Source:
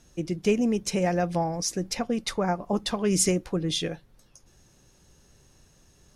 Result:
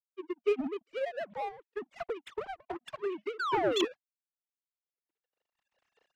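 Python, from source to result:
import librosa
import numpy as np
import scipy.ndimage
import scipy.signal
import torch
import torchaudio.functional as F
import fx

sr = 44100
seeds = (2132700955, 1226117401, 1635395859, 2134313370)

y = fx.sine_speech(x, sr)
y = fx.recorder_agc(y, sr, target_db=-16.0, rise_db_per_s=13.0, max_gain_db=30)
y = fx.leveller(y, sr, passes=1)
y = fx.spec_paint(y, sr, seeds[0], shape='fall', start_s=3.39, length_s=0.46, low_hz=310.0, high_hz=1600.0, level_db=-17.0)
y = fx.power_curve(y, sr, exponent=2.0)
y = y * 10.0 ** (-8.0 / 20.0)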